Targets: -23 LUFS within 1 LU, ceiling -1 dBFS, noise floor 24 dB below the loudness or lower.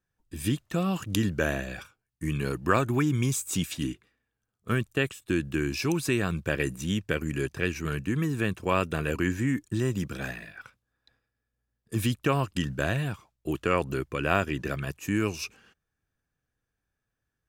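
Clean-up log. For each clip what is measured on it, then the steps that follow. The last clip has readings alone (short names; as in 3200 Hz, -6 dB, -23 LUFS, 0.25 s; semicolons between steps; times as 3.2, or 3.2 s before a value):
loudness -29.0 LUFS; peak -8.0 dBFS; loudness target -23.0 LUFS
-> gain +6 dB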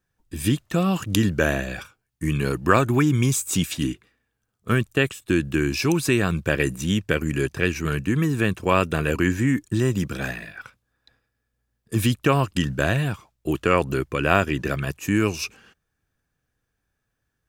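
loudness -23.0 LUFS; peak -2.0 dBFS; noise floor -78 dBFS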